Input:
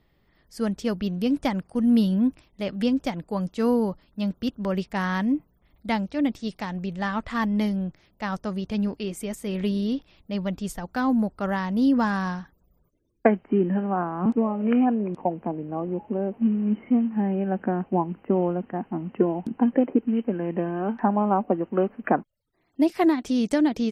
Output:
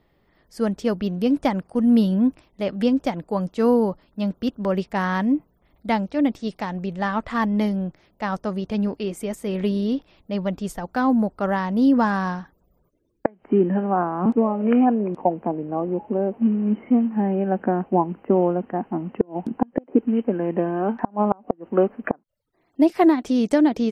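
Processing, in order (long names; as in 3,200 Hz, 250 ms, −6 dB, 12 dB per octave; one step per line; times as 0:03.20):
parametric band 590 Hz +6.5 dB 3 octaves
gate with flip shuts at −4 dBFS, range −32 dB
level −1 dB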